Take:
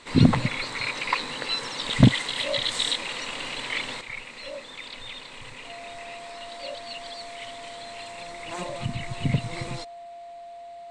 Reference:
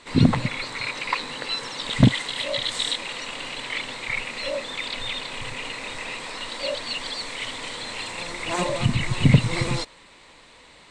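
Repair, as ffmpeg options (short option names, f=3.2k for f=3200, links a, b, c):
-af "bandreject=f=690:w=30,asetnsamples=n=441:p=0,asendcmd='4.01 volume volume 9dB',volume=0dB"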